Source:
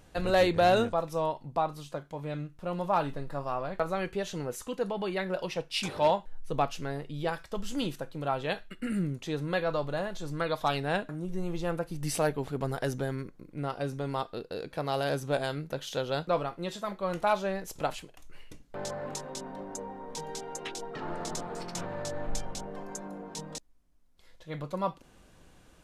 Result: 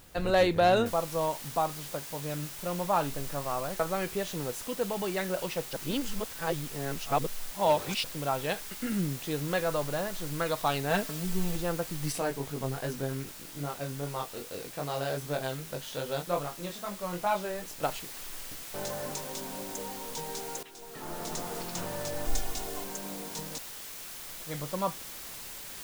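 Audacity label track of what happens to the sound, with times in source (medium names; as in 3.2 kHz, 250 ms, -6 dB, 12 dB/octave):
0.860000	0.860000	noise floor step -58 dB -43 dB
5.730000	8.040000	reverse
10.900000	11.560000	comb 4.5 ms, depth 75%
12.120000	17.830000	chorus 2.5 Hz, delay 20 ms, depth 3.1 ms
20.630000	21.410000	fade in, from -16.5 dB
22.250000	22.840000	comb 2.8 ms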